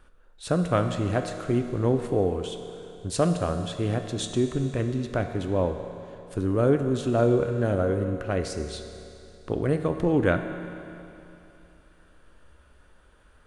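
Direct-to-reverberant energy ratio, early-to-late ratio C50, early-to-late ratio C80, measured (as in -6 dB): 6.0 dB, 7.5 dB, 8.0 dB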